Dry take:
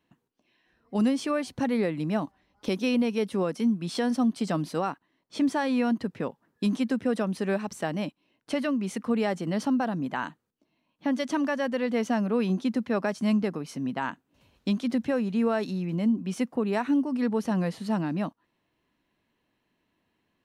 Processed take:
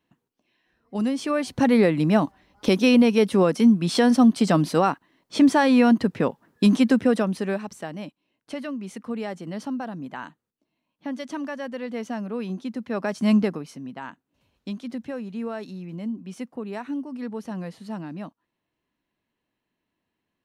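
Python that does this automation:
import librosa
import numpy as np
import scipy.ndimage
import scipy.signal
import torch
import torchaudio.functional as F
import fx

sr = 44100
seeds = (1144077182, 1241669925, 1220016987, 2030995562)

y = fx.gain(x, sr, db=fx.line((1.04, -1.0), (1.69, 8.5), (6.96, 8.5), (7.89, -4.5), (12.75, -4.5), (13.38, 6.5), (13.83, -6.0)))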